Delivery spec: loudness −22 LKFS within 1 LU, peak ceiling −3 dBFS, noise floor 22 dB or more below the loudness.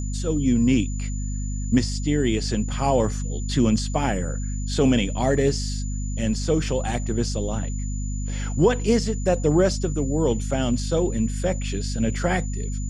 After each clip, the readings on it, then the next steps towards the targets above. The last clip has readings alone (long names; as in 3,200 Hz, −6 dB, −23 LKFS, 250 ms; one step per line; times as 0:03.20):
mains hum 50 Hz; hum harmonics up to 250 Hz; level of the hum −25 dBFS; interfering tone 7,000 Hz; level of the tone −39 dBFS; integrated loudness −24.0 LKFS; sample peak −6.5 dBFS; target loudness −22.0 LKFS
→ mains-hum notches 50/100/150/200/250 Hz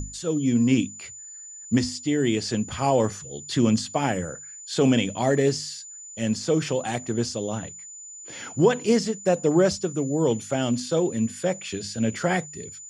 mains hum none found; interfering tone 7,000 Hz; level of the tone −39 dBFS
→ notch filter 7,000 Hz, Q 30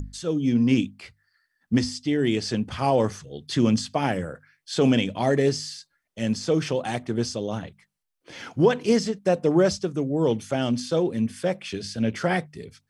interfering tone none found; integrated loudness −24.5 LKFS; sample peak −7.5 dBFS; target loudness −22.0 LKFS
→ level +2.5 dB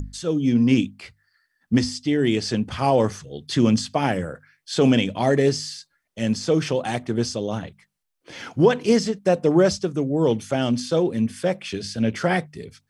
integrated loudness −22.0 LKFS; sample peak −5.0 dBFS; background noise floor −75 dBFS